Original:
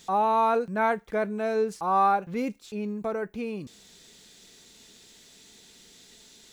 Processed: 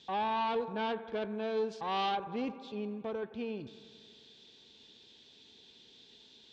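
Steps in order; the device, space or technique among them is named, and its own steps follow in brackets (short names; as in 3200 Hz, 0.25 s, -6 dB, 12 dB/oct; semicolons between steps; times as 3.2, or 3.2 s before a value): analogue delay pedal into a guitar amplifier (analogue delay 88 ms, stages 2048, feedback 76%, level -17.5 dB; tube stage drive 23 dB, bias 0.45; speaker cabinet 77–4500 Hz, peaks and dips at 180 Hz -7 dB, 670 Hz -5 dB, 1300 Hz -9 dB, 2000 Hz -8 dB, 3400 Hz +6 dB); 1.57–2.15 high shelf 4700 Hz +9 dB; gain -2.5 dB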